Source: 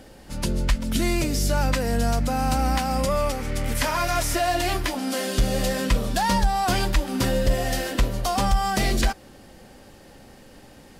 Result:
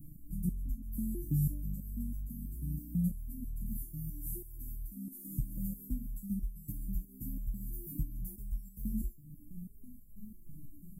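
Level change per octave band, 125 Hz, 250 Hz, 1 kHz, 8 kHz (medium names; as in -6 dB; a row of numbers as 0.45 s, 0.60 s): -11.0 dB, -12.0 dB, under -40 dB, -22.0 dB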